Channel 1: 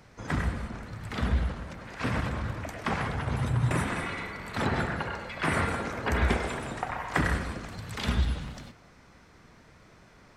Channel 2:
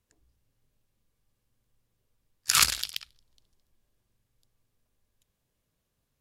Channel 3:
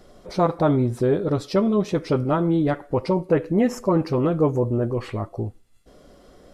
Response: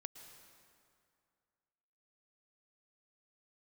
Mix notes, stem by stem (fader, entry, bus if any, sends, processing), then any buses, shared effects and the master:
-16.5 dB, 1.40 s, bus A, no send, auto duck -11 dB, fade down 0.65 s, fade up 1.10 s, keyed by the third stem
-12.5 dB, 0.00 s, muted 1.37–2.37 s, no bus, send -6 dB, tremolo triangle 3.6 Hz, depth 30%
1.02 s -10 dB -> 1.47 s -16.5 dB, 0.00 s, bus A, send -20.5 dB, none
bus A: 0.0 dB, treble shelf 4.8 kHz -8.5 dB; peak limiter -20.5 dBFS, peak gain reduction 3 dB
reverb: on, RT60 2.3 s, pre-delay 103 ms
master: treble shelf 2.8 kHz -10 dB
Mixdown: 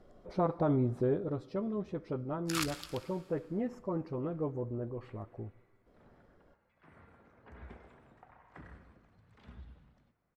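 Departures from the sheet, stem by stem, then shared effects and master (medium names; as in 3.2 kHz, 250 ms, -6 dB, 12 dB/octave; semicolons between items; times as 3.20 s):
stem 1 -16.5 dB -> -24.5 dB; reverb return +9.5 dB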